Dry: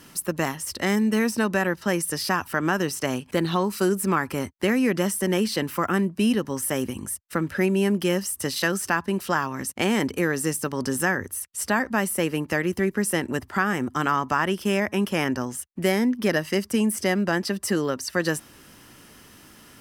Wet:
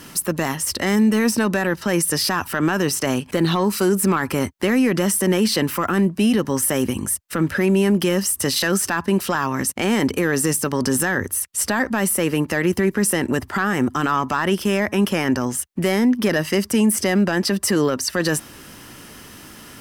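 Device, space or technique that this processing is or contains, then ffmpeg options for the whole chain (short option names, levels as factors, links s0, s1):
soft clipper into limiter: -af "asoftclip=type=tanh:threshold=0.282,alimiter=limit=0.112:level=0:latency=1:release=21,volume=2.66"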